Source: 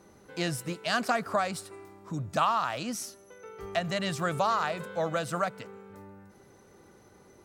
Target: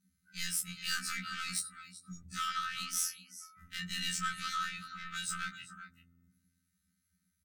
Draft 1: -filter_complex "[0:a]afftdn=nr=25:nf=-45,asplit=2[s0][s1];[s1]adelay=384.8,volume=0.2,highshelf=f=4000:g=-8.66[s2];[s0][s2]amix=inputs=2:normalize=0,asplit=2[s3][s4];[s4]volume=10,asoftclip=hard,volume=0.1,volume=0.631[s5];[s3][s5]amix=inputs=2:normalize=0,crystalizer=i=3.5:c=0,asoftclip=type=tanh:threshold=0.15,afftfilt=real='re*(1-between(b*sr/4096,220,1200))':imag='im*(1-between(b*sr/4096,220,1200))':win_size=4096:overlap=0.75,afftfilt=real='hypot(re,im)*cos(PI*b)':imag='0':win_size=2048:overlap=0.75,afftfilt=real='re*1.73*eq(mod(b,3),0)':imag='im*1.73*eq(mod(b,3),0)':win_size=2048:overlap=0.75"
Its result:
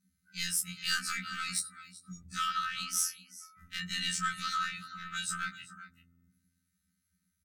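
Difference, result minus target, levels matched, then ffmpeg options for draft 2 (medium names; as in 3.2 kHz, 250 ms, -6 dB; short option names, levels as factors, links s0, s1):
saturation: distortion -6 dB
-filter_complex "[0:a]afftdn=nr=25:nf=-45,asplit=2[s0][s1];[s1]adelay=384.8,volume=0.2,highshelf=f=4000:g=-8.66[s2];[s0][s2]amix=inputs=2:normalize=0,asplit=2[s3][s4];[s4]volume=10,asoftclip=hard,volume=0.1,volume=0.631[s5];[s3][s5]amix=inputs=2:normalize=0,crystalizer=i=3.5:c=0,asoftclip=type=tanh:threshold=0.0708,afftfilt=real='re*(1-between(b*sr/4096,220,1200))':imag='im*(1-between(b*sr/4096,220,1200))':win_size=4096:overlap=0.75,afftfilt=real='hypot(re,im)*cos(PI*b)':imag='0':win_size=2048:overlap=0.75,afftfilt=real='re*1.73*eq(mod(b,3),0)':imag='im*1.73*eq(mod(b,3),0)':win_size=2048:overlap=0.75"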